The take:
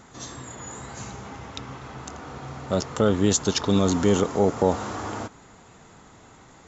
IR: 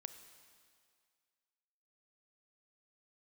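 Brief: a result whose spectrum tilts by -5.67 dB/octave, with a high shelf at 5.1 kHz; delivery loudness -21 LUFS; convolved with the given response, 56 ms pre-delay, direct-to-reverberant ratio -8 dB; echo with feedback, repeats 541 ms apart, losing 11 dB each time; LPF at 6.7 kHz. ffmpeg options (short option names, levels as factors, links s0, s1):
-filter_complex "[0:a]lowpass=6700,highshelf=f=5100:g=-4,aecho=1:1:541|1082|1623:0.282|0.0789|0.0221,asplit=2[s0][s1];[1:a]atrim=start_sample=2205,adelay=56[s2];[s1][s2]afir=irnorm=-1:irlink=0,volume=4.22[s3];[s0][s3]amix=inputs=2:normalize=0,volume=0.501"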